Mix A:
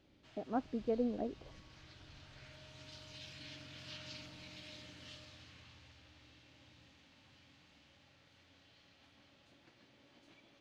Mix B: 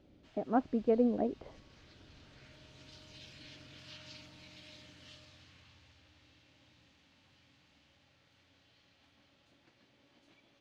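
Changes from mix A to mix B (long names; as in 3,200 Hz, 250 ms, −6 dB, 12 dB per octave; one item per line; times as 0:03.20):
speech +6.5 dB
background: send −6.5 dB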